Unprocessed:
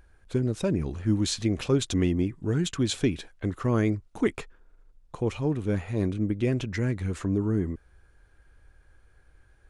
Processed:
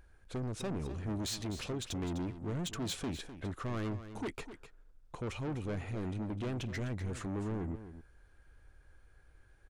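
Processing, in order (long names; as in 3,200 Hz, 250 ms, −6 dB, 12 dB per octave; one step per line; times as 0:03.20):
0:01.46–0:02.02: downward compressor 3 to 1, threshold −27 dBFS, peak gain reduction 7.5 dB
soft clipping −30.5 dBFS, distortion −6 dB
single-tap delay 254 ms −12 dB
level −3.5 dB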